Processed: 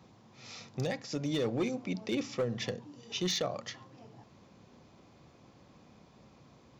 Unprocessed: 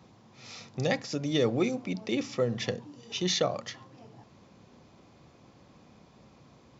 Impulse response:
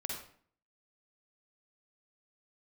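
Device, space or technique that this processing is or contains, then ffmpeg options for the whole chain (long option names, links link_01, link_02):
limiter into clipper: -af "alimiter=limit=-18.5dB:level=0:latency=1:release=273,asoftclip=type=hard:threshold=-23dB,volume=-2dB"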